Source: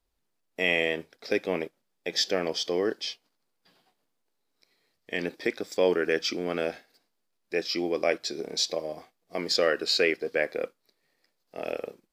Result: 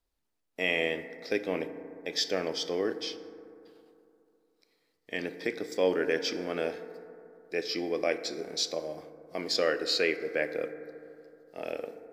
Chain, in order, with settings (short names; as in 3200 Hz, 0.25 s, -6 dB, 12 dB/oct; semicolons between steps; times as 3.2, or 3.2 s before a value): FDN reverb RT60 2.8 s, high-frequency decay 0.25×, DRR 9.5 dB; gain -3.5 dB